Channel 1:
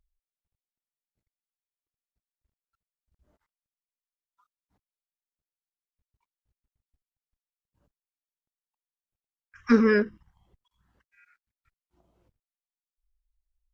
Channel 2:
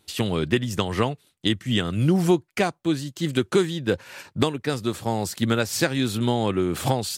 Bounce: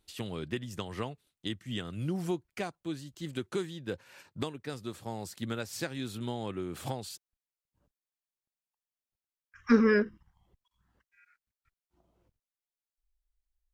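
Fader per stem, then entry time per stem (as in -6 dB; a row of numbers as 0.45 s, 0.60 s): -3.0 dB, -13.5 dB; 0.00 s, 0.00 s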